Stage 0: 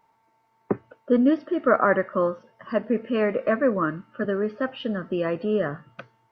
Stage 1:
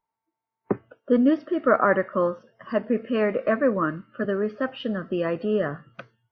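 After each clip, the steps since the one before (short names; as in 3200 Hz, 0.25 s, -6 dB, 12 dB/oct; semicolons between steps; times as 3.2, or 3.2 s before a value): spectral noise reduction 20 dB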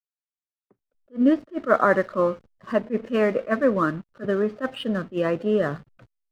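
in parallel at -2 dB: compressor 6:1, threshold -29 dBFS, peak gain reduction 14.5 dB; on the sum: backlash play -38 dBFS; attack slew limiter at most 340 dB/s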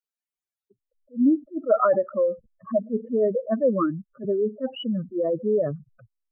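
spectral contrast raised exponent 3.3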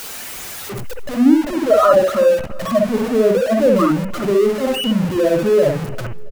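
zero-crossing step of -25.5 dBFS; feedback echo 0.336 s, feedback 39%, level -22 dB; reverb, pre-delay 59 ms, DRR 2 dB; gain +4.5 dB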